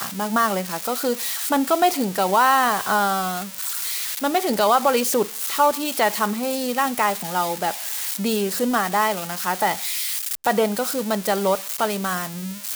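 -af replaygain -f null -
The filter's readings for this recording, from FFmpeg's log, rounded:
track_gain = +1.8 dB
track_peak = 0.356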